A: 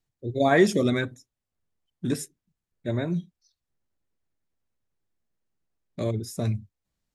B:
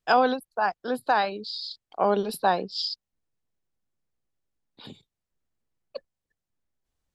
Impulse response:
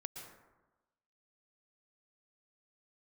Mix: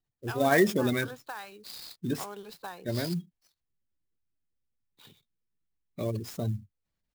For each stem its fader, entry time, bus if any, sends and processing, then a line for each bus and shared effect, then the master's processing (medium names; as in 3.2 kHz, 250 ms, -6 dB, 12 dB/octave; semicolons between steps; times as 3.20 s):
-4.5 dB, 0.00 s, no send, spectral gate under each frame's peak -30 dB strong
-10.5 dB, 0.20 s, no send, fifteen-band graphic EQ 250 Hz -9 dB, 630 Hz -9 dB, 10 kHz -11 dB; compression 5:1, threshold -28 dBFS, peak gain reduction 9 dB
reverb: none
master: peaking EQ 2.6 kHz +4 dB 2.9 oct; sampling jitter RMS 0.025 ms